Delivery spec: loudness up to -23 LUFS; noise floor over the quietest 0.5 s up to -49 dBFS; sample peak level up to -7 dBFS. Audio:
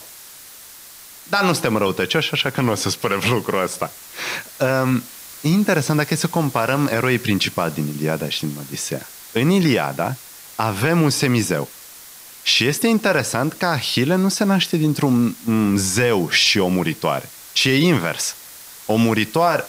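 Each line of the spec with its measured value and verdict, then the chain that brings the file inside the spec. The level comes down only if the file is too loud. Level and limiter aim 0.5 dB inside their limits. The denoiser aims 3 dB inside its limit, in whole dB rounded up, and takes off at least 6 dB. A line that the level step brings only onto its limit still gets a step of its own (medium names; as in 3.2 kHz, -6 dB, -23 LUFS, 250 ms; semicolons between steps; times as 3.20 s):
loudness -19.0 LUFS: fail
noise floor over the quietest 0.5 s -41 dBFS: fail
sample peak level -5.0 dBFS: fail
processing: noise reduction 7 dB, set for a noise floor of -41 dBFS; trim -4.5 dB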